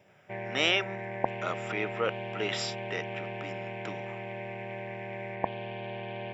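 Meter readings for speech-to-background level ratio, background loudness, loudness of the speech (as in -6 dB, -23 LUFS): 5.5 dB, -37.5 LUFS, -32.0 LUFS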